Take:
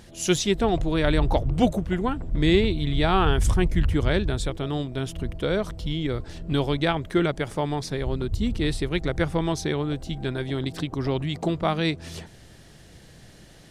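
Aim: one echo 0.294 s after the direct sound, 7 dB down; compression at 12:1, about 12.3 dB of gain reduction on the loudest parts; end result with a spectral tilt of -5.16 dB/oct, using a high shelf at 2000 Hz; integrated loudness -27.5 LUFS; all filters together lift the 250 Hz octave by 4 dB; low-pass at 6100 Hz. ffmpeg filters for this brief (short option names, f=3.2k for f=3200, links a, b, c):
-af "lowpass=6.1k,equalizer=f=250:t=o:g=5.5,highshelf=f=2k:g=6,acompressor=threshold=-22dB:ratio=12,aecho=1:1:294:0.447"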